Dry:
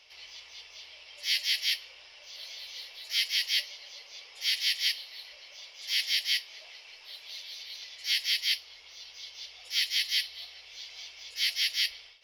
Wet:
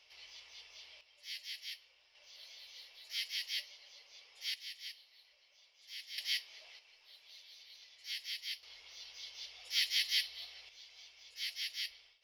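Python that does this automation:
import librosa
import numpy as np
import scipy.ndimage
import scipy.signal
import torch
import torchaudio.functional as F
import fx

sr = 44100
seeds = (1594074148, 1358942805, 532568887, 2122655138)

y = fx.gain(x, sr, db=fx.steps((0.0, -7.0), (1.01, -17.0), (2.15, -11.0), (4.54, -19.0), (6.18, -7.5), (6.79, -14.0), (8.63, -4.5), (10.69, -12.0)))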